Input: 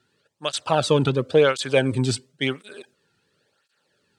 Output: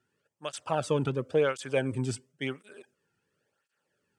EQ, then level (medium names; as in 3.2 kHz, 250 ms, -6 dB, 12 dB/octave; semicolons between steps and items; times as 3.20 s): peaking EQ 4 kHz -12.5 dB 0.47 oct; -8.5 dB